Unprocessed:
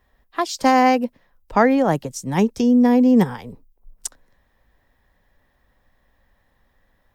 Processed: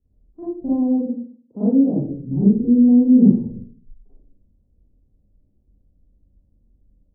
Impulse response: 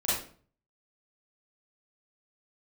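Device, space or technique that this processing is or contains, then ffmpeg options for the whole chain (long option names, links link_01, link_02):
next room: -filter_complex "[0:a]asplit=3[link_01][link_02][link_03];[link_01]afade=type=out:start_time=0.97:duration=0.02[link_04];[link_02]highpass=frequency=170:width=0.5412,highpass=frequency=170:width=1.3066,afade=type=in:start_time=0.97:duration=0.02,afade=type=out:start_time=1.93:duration=0.02[link_05];[link_03]afade=type=in:start_time=1.93:duration=0.02[link_06];[link_04][link_05][link_06]amix=inputs=3:normalize=0,lowpass=frequency=350:width=0.5412,lowpass=frequency=350:width=1.3066[link_07];[1:a]atrim=start_sample=2205[link_08];[link_07][link_08]afir=irnorm=-1:irlink=0,volume=-5dB"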